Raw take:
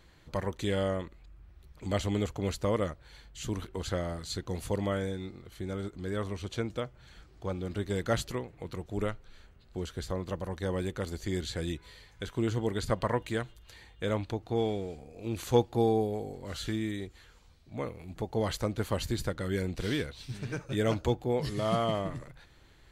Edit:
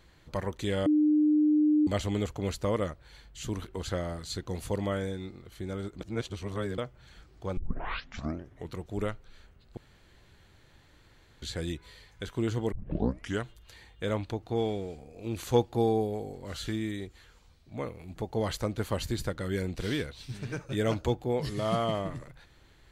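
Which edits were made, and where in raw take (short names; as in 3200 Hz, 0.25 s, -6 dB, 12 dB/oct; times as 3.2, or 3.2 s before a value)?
0.86–1.87 bleep 302 Hz -20 dBFS
6.01–6.78 reverse
7.57 tape start 1.15 s
9.77–11.42 room tone
12.72 tape start 0.70 s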